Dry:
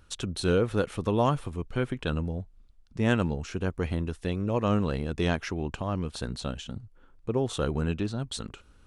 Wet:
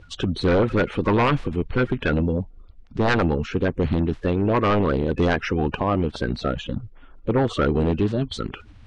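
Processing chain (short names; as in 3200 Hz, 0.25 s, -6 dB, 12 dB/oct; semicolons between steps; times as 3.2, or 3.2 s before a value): bin magnitudes rounded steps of 30 dB; LPF 3000 Hz 12 dB/oct; sine folder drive 10 dB, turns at -11 dBFS; gain -3 dB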